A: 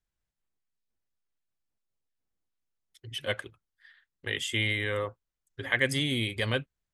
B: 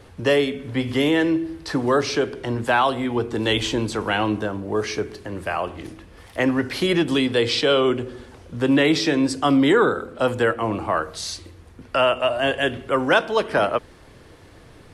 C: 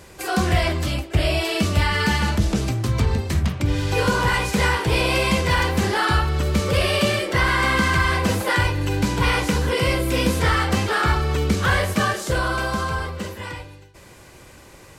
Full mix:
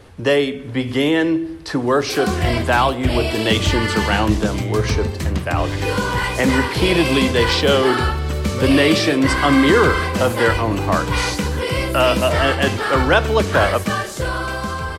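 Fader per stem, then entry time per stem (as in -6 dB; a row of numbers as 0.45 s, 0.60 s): -9.5 dB, +2.5 dB, -0.5 dB; 0.00 s, 0.00 s, 1.90 s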